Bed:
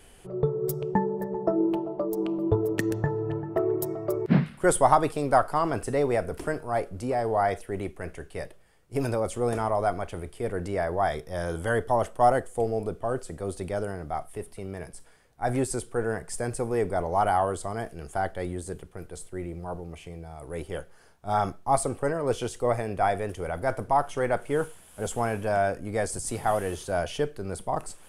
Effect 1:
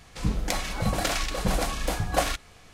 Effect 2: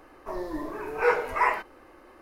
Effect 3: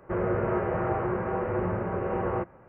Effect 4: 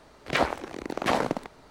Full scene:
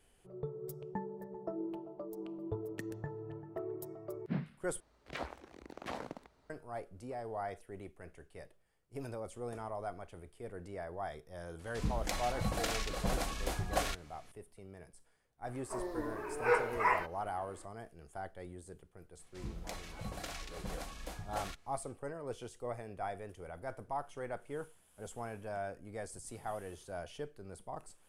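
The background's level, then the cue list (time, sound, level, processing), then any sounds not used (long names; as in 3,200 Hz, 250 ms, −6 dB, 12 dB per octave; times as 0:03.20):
bed −15.5 dB
0:04.80: overwrite with 4 −17.5 dB + parametric band 61 Hz +9.5 dB
0:11.59: mix in 1 −9 dB
0:15.44: mix in 2 −6.5 dB
0:19.19: mix in 1 −17 dB
not used: 3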